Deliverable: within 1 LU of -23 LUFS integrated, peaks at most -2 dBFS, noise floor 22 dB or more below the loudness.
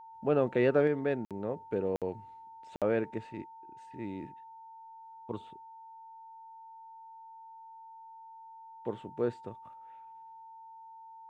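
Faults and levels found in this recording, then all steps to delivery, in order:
dropouts 3; longest dropout 57 ms; steady tone 900 Hz; tone level -48 dBFS; loudness -33.0 LUFS; peak -15.0 dBFS; loudness target -23.0 LUFS
-> interpolate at 1.25/1.96/2.76, 57 ms; notch 900 Hz, Q 30; gain +10 dB

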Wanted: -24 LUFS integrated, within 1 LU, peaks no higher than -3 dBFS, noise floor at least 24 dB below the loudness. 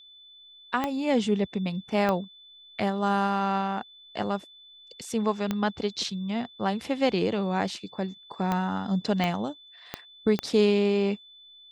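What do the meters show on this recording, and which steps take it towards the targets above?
clicks 7; steady tone 3500 Hz; tone level -49 dBFS; loudness -27.5 LUFS; peak -11.0 dBFS; loudness target -24.0 LUFS
-> de-click; notch 3500 Hz, Q 30; gain +3.5 dB

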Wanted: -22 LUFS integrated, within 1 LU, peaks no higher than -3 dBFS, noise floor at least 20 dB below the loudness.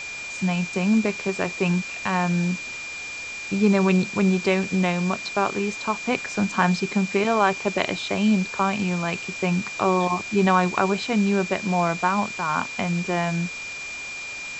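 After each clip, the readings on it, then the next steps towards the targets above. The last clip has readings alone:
steady tone 2400 Hz; tone level -32 dBFS; noise floor -34 dBFS; noise floor target -44 dBFS; loudness -23.5 LUFS; peak -5.0 dBFS; loudness target -22.0 LUFS
-> notch 2400 Hz, Q 30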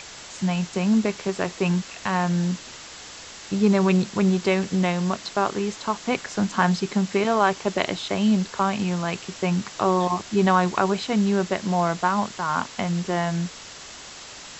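steady tone none; noise floor -41 dBFS; noise floor target -44 dBFS
-> denoiser 6 dB, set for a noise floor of -41 dBFS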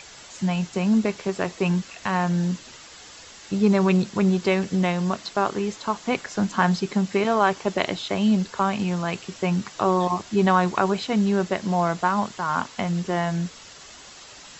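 noise floor -45 dBFS; loudness -23.5 LUFS; peak -5.5 dBFS; loudness target -22.0 LUFS
-> gain +1.5 dB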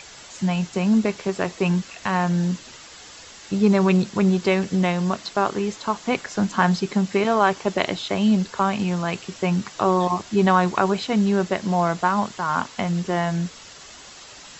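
loudness -22.0 LUFS; peak -4.0 dBFS; noise floor -43 dBFS

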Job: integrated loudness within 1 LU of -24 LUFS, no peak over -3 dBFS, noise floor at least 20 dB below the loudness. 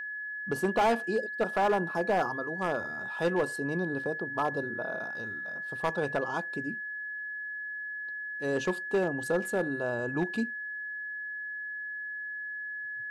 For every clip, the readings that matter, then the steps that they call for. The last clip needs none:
clipped 0.8%; flat tops at -21.0 dBFS; steady tone 1700 Hz; tone level -35 dBFS; loudness -32.0 LUFS; peak -21.0 dBFS; loudness target -24.0 LUFS
-> clip repair -21 dBFS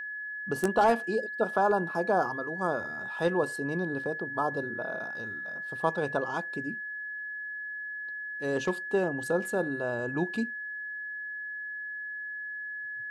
clipped 0.0%; steady tone 1700 Hz; tone level -35 dBFS
-> notch 1700 Hz, Q 30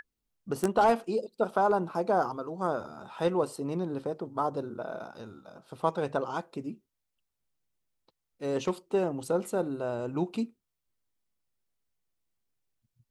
steady tone none; loudness -31.0 LUFS; peak -11.5 dBFS; loudness target -24.0 LUFS
-> gain +7 dB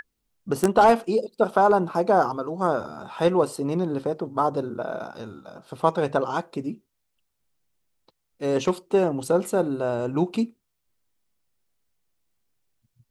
loudness -24.0 LUFS; peak -4.5 dBFS; noise floor -77 dBFS

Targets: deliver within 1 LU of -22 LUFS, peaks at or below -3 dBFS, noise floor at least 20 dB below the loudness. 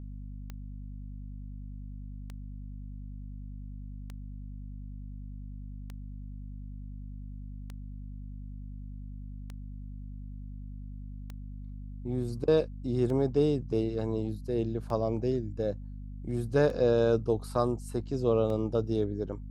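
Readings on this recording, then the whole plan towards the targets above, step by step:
clicks 11; hum 50 Hz; harmonics up to 250 Hz; hum level -39 dBFS; loudness -29.5 LUFS; peak -12.5 dBFS; loudness target -22.0 LUFS
-> de-click; de-hum 50 Hz, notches 5; gain +7.5 dB

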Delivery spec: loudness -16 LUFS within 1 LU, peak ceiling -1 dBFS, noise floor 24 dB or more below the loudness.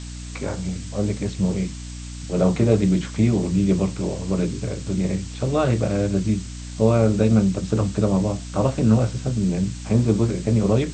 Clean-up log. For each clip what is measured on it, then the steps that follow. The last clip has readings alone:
hum 60 Hz; harmonics up to 300 Hz; hum level -32 dBFS; noise floor -34 dBFS; noise floor target -46 dBFS; loudness -22.0 LUFS; peak -3.5 dBFS; loudness target -16.0 LUFS
-> notches 60/120/180/240/300 Hz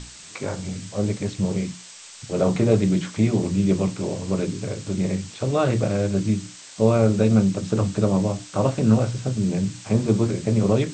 hum none; noise floor -43 dBFS; noise floor target -47 dBFS
-> noise print and reduce 6 dB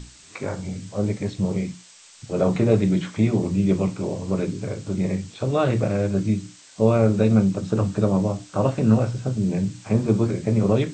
noise floor -49 dBFS; loudness -22.5 LUFS; peak -4.0 dBFS; loudness target -16.0 LUFS
-> gain +6.5 dB; limiter -1 dBFS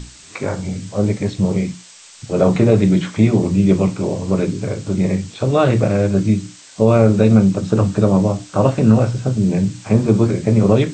loudness -16.5 LUFS; peak -1.0 dBFS; noise floor -42 dBFS

